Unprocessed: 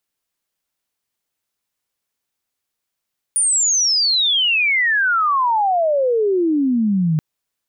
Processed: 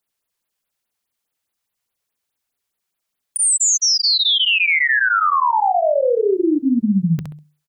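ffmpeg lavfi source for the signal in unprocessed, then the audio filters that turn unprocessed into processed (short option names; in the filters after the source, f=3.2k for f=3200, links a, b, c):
-f lavfi -i "aevalsrc='pow(10,(-13.5-0.5*t/3.83)/20)*sin(2*PI*9600*3.83/log(150/9600)*(exp(log(150/9600)*t/3.83)-1))':d=3.83:s=44100"
-filter_complex "[0:a]bandreject=f=50:t=h:w=6,bandreject=f=100:t=h:w=6,bandreject=f=150:t=h:w=6,asplit=2[a][b];[b]aecho=0:1:66|132|198:0.562|0.135|0.0324[c];[a][c]amix=inputs=2:normalize=0,afftfilt=real='re*(1-between(b*sr/1024,220*pow(7300/220,0.5+0.5*sin(2*PI*4.8*pts/sr))/1.41,220*pow(7300/220,0.5+0.5*sin(2*PI*4.8*pts/sr))*1.41))':imag='im*(1-between(b*sr/1024,220*pow(7300/220,0.5+0.5*sin(2*PI*4.8*pts/sr))/1.41,220*pow(7300/220,0.5+0.5*sin(2*PI*4.8*pts/sr))*1.41))':win_size=1024:overlap=0.75"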